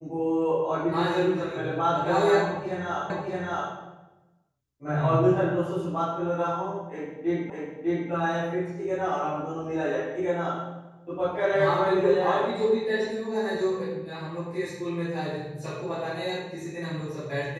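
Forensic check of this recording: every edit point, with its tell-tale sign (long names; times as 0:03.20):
0:03.10: the same again, the last 0.62 s
0:07.50: the same again, the last 0.6 s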